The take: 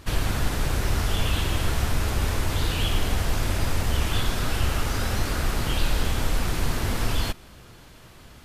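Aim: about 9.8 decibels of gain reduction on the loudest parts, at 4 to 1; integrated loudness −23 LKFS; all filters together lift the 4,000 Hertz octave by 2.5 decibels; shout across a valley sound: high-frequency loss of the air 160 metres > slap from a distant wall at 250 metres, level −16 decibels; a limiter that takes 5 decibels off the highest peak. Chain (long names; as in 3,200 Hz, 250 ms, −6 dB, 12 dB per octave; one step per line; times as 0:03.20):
parametric band 4,000 Hz +8.5 dB
downward compressor 4 to 1, threshold −29 dBFS
brickwall limiter −23 dBFS
high-frequency loss of the air 160 metres
slap from a distant wall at 250 metres, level −16 dB
level +13 dB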